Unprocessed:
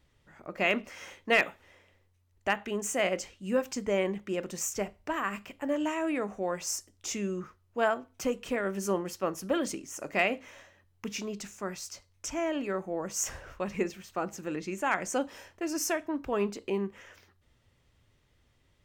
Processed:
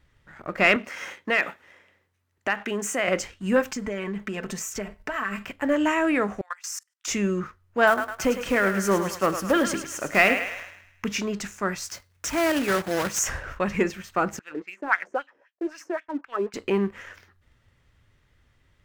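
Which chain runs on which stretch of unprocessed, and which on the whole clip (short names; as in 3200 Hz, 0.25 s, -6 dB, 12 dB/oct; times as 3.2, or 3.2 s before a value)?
0.76–3.08 HPF 160 Hz + compressor 2:1, threshold -34 dBFS
3.72–5.46 comb 4.6 ms, depth 69% + compressor 4:1, threshold -37 dBFS
6.41–7.08 HPF 1100 Hz 24 dB/oct + level quantiser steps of 20 dB
7.87–11.05 block floating point 5-bit + thinning echo 0.105 s, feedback 53%, high-pass 580 Hz, level -8 dB
11.89–13.21 block floating point 3-bit + HPF 49 Hz
14.39–16.54 expander -44 dBFS + low shelf 160 Hz -7.5 dB + wah 3.8 Hz 310–3300 Hz, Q 2.6
whole clip: low shelf 180 Hz +6.5 dB; sample leveller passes 1; bell 1600 Hz +8 dB 1.2 oct; gain +2 dB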